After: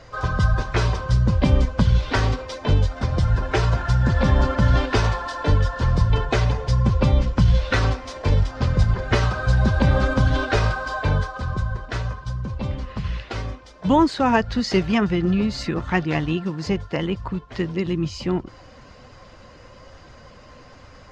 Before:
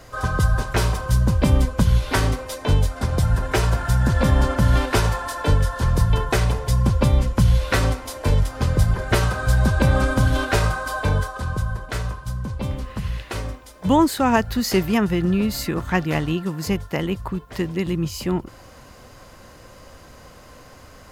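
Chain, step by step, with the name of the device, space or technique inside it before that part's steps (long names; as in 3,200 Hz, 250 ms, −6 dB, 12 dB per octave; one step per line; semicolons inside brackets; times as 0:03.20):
clip after many re-uploads (low-pass filter 5,800 Hz 24 dB per octave; spectral magnitudes quantised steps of 15 dB)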